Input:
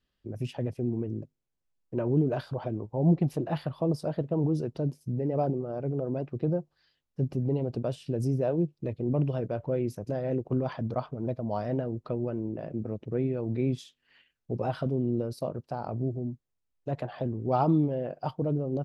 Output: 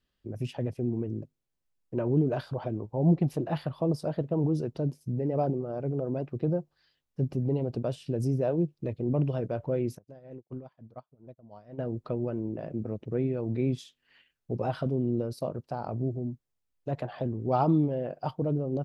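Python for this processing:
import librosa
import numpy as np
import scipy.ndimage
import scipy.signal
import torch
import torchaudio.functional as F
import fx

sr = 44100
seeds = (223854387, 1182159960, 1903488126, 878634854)

y = fx.upward_expand(x, sr, threshold_db=-46.0, expansion=2.5, at=(9.97, 11.78), fade=0.02)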